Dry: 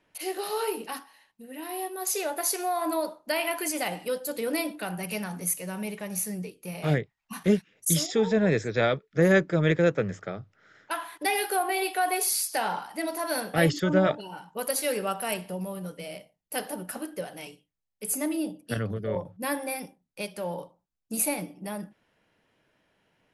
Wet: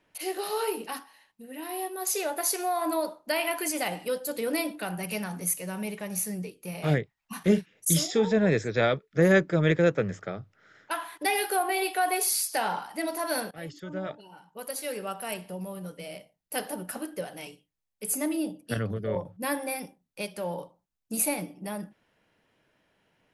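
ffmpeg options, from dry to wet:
-filter_complex "[0:a]asettb=1/sr,asplit=3[a][b][c];[a]atrim=end=7.424[d];[b]atrim=start=7.42:end=8.25,asetpts=PTS-STARTPTS,afade=t=in:d=0.004:c=qsin,afade=t=out:st=0.826:d=0.004:c=qsin,asplit=2[e][f];[f]adelay=42,volume=-12dB[g];[e][g]amix=inputs=2:normalize=0,atrim=end_sample=36603[h];[c]atrim=start=8.246[i];[d][h]acrossfade=d=0.004:c1=hsin:c2=qsin[j];[j][i]acrossfade=d=0.004:c1=qsin:c2=hsin,asplit=2[k][l];[k]atrim=end=13.51,asetpts=PTS-STARTPTS,afade=t=out:st=13.506:d=0.004:c=hsin:silence=0.0944061[m];[l]atrim=start=13.51,asetpts=PTS-STARTPTS,afade=t=in:d=3.09:silence=0.0944061[n];[m][n]concat=n=2:v=0:a=1"

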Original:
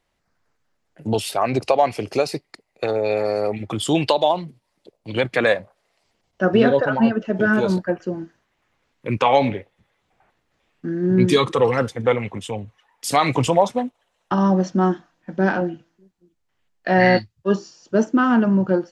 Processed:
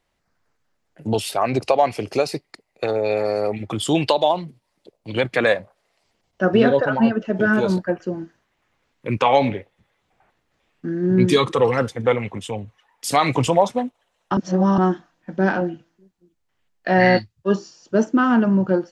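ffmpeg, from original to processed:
-filter_complex "[0:a]asplit=3[a][b][c];[a]atrim=end=14.372[d];[b]atrim=start=14.368:end=14.782,asetpts=PTS-STARTPTS,areverse[e];[c]atrim=start=14.778[f];[d][e]acrossfade=d=0.004:c1=hsin:c2=hsin[g];[g][f]acrossfade=d=0.004:c1=hsin:c2=hsin"

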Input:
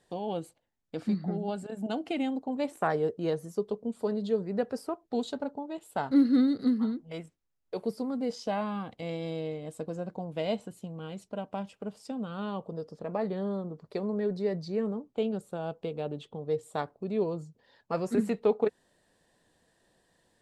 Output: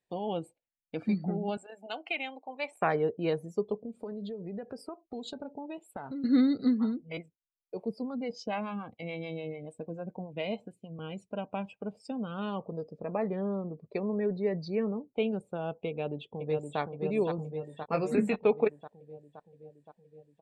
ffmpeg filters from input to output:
-filter_complex "[0:a]asettb=1/sr,asplit=3[a][b][c];[a]atrim=end=1.574[d];[b]atrim=start=1.57:end=2.82,asetpts=PTS-STARTPTS,afade=t=in:d=0.004:c=qsin,afade=t=out:st=1.246:d=0.004:c=qsin,highpass=720[e];[c]atrim=start=2.816[f];[d][e]acrossfade=d=0.004:c1=hsin:c2=qsin[g];[g][f]acrossfade=d=0.004:c1=qsin:c2=hsin,asettb=1/sr,asplit=3[h][i][j];[h]atrim=end=3.794[k];[i]atrim=start=3.79:end=6.24,asetpts=PTS-STARTPTS,afade=t=in:d=0.004:c=qsin,afade=t=out:st=2.446:d=0.004:c=qsin,acompressor=threshold=-35dB:ratio=10:attack=3.2:release=140:knee=1:detection=peak[l];[j]atrim=start=6.236[m];[k][l]acrossfade=d=0.004:c1=hsin:c2=qsin[n];[n][m]acrossfade=d=0.004:c1=qsin:c2=hsin,asettb=1/sr,asplit=3[o][p][q];[o]atrim=end=7.174[r];[p]atrim=start=7.17:end=10.99,asetpts=PTS-STARTPTS,afade=t=in:d=0.004:c=qsin,afade=t=out:st=3.816:d=0.004:c=qsin,acrossover=split=470[s][t];[s]aeval=exprs='val(0)*(1-0.7/2+0.7/2*cos(2*PI*6.9*n/s))':c=same[u];[t]aeval=exprs='val(0)*(1-0.7/2-0.7/2*cos(2*PI*6.9*n/s))':c=same[v];[u][v]amix=inputs=2:normalize=0[w];[q]atrim=start=10.986[x];[r][w]acrossfade=d=0.004:c1=hsin:c2=qsin[y];[y][x]acrossfade=d=0.004:c1=qsin:c2=hsin,asettb=1/sr,asplit=3[z][aa][ab];[z]atrim=end=12.904[ac];[aa]atrim=start=12.9:end=14.62,asetpts=PTS-STARTPTS,afade=t=in:d=0.004:c=qsin,afade=t=out:st=1.716:d=0.004:c=qsin,highshelf=f=4.4k:g=-9.5[ad];[ab]atrim=start=14.616[ae];[ac][ad]acrossfade=d=0.004:c1=hsin:c2=qsin[af];[af][ae]acrossfade=d=0.004:c1=qsin:c2=hsin,asplit=2[ag][ah];[ah]afade=t=in:st=15.88:d=0.01,afade=t=out:st=16.79:d=0.01,aecho=0:1:520|1040|1560|2080|2600|3120|3640|4160|4680|5200|5720|6240:0.595662|0.416964|0.291874|0.204312|0.143018|0.100113|0.0700791|0.0490553|0.0343387|0.0240371|0.016826|0.0117782[ai];[ag][ai]amix=inputs=2:normalize=0,asettb=1/sr,asplit=3[aj][ak][al];[aj]atrim=end=17.364[am];[ak]atrim=start=17.36:end=18.36,asetpts=PTS-STARTPTS,afade=t=in:d=0.004:c=qsin,afade=t=out:st=0.996:d=0.004:c=qsin,asplit=2[an][ao];[ao]adelay=19,volume=-7.5dB[ap];[an][ap]amix=inputs=2:normalize=0,atrim=end_sample=44100[aq];[al]atrim=start=18.356[ar];[am][aq]acrossfade=d=0.004:c1=hsin:c2=qsin[as];[as][ar]acrossfade=d=0.004:c1=qsin:c2=hsin,afftdn=nr=20:nf=-52,equalizer=f=2.4k:w=4:g=12.5"

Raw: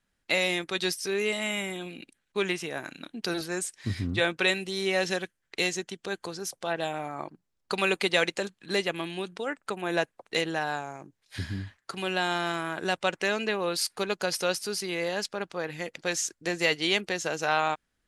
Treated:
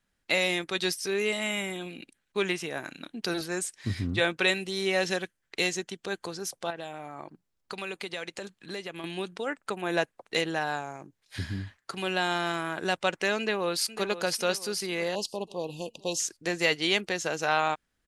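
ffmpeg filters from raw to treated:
-filter_complex "[0:a]asettb=1/sr,asplit=3[a][b][c];[a]atrim=end=6.704[d];[b]atrim=start=6.7:end=9.04,asetpts=PTS-STARTPTS,afade=t=in:d=0.004:c=qsin,afade=t=out:st=2.336:d=0.004:c=qsin,acompressor=threshold=-37dB:ratio=2.5:attack=3.2:release=140:knee=1:detection=peak[e];[c]atrim=start=9.036[f];[d][e]acrossfade=d=0.004:c1=hsin:c2=qsin[g];[g][f]acrossfade=d=0.004:c1=qsin:c2=hsin,asplit=2[h][i];[i]afade=t=in:st=13.38:d=0.01,afade=t=out:st=14.05:d=0.01,aecho=0:1:500|1000|1500|2000|2500:0.237137|0.118569|0.0592843|0.0296422|0.0148211[j];[h][j]amix=inputs=2:normalize=0,asettb=1/sr,asplit=3[k][l][m];[k]atrim=end=15.154[n];[l]atrim=start=15.15:end=16.2,asetpts=PTS-STARTPTS,afade=t=in:d=0.004:c=qsin,afade=t=out:st=1.046:d=0.004:c=qsin,asuperstop=centerf=1700:order=20:qfactor=1.1[o];[m]atrim=start=16.196[p];[n][o]acrossfade=d=0.004:c1=hsin:c2=qsin[q];[q][p]acrossfade=d=0.004:c1=qsin:c2=hsin"

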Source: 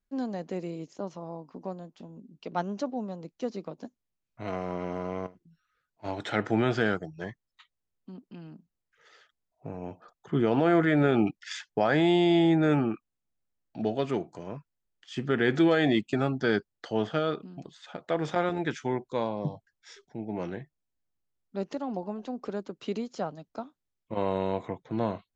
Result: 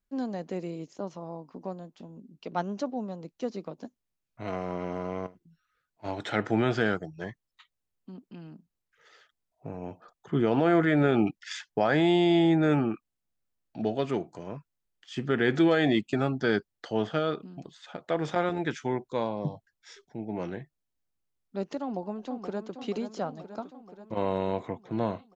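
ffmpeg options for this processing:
-filter_complex "[0:a]asplit=2[a][b];[b]afade=t=in:st=21.82:d=0.01,afade=t=out:st=22.77:d=0.01,aecho=0:1:480|960|1440|1920|2400|2880|3360|3840|4320|4800|5280:0.354813|0.248369|0.173859|0.121701|0.0851907|0.0596335|0.0417434|0.0292204|0.0204543|0.014318|0.0100226[c];[a][c]amix=inputs=2:normalize=0"

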